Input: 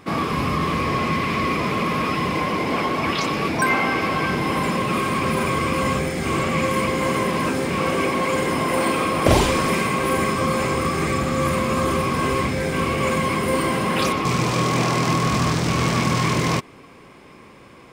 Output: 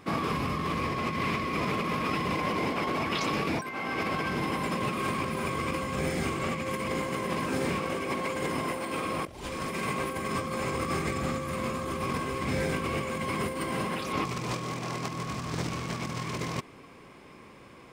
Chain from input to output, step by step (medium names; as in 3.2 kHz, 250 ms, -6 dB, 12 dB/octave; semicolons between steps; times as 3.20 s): compressor with a negative ratio -23 dBFS, ratio -0.5; trim -7.5 dB